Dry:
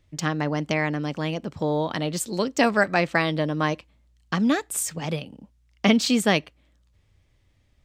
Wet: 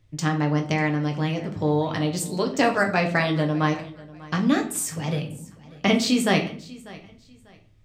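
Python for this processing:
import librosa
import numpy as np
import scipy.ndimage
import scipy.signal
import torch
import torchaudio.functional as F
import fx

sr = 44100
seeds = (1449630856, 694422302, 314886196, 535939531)

y = fx.peak_eq(x, sr, hz=110.0, db=13.0, octaves=0.44)
y = fx.echo_feedback(y, sr, ms=594, feedback_pct=27, wet_db=-20.5)
y = fx.room_shoebox(y, sr, seeds[0], volume_m3=46.0, walls='mixed', distance_m=0.47)
y = F.gain(torch.from_numpy(y), -2.0).numpy()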